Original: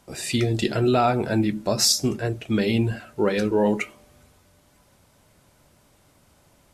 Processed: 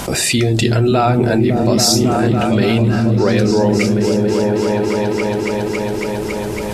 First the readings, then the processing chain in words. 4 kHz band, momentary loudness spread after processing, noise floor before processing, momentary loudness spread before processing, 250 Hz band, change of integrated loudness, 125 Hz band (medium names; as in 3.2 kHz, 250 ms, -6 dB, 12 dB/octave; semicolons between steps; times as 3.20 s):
+7.0 dB, 7 LU, -60 dBFS, 8 LU, +10.5 dB, +7.5 dB, +11.5 dB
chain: delay with an opening low-pass 277 ms, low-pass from 200 Hz, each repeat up 1 oct, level 0 dB; level flattener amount 70%; trim +3 dB